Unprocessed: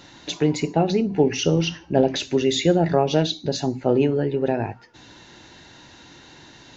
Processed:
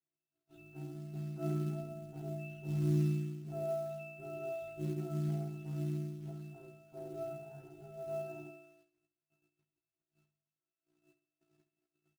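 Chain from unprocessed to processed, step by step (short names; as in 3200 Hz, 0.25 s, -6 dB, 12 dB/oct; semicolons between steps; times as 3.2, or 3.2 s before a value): minimum comb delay 5.7 ms; high shelf 4700 Hz +5 dB; in parallel at +1 dB: limiter -15 dBFS, peak gain reduction 10 dB; on the sum: tone controls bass -3 dB, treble -4 dB; octave resonator E, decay 0.65 s; companded quantiser 6-bit; granular stretch 1.8×, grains 34 ms; gate -59 dBFS, range -26 dB; on a send: feedback echo 67 ms, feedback 46%, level -13.5 dB; on the sum: gain -8.5 dB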